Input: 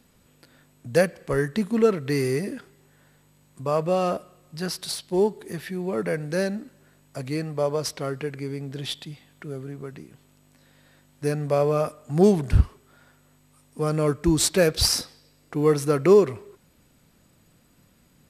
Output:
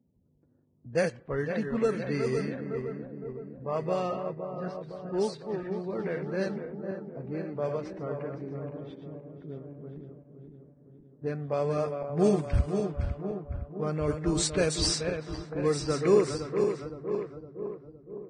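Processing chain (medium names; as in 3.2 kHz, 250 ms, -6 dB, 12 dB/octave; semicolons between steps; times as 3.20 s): backward echo that repeats 256 ms, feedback 76%, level -6 dB; level-controlled noise filter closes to 340 Hz, open at -14.5 dBFS; trim -7.5 dB; Vorbis 16 kbps 22.05 kHz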